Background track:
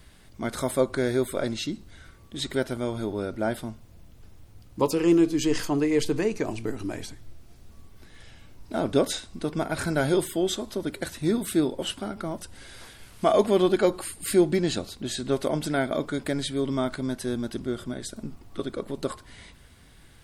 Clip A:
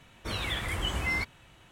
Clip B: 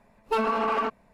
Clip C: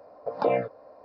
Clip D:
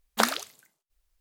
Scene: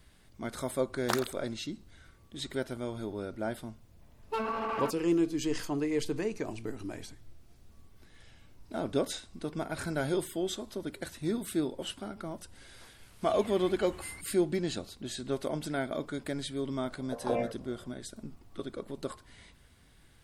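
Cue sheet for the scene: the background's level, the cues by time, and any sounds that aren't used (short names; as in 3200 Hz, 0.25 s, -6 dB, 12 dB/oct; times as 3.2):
background track -7.5 dB
0.9 add D -8 dB + Wiener smoothing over 15 samples
4.01 add B -8 dB
12.97 add A -17.5 dB
16.85 add C -7.5 dB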